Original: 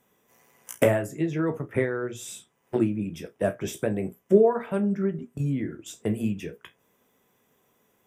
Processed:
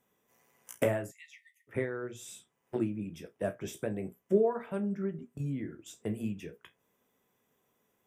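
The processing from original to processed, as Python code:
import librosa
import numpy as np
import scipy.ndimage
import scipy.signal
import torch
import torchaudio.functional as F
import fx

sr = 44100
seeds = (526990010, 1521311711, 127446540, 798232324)

y = fx.brickwall_highpass(x, sr, low_hz=1800.0, at=(1.1, 1.67), fade=0.02)
y = y * librosa.db_to_amplitude(-8.0)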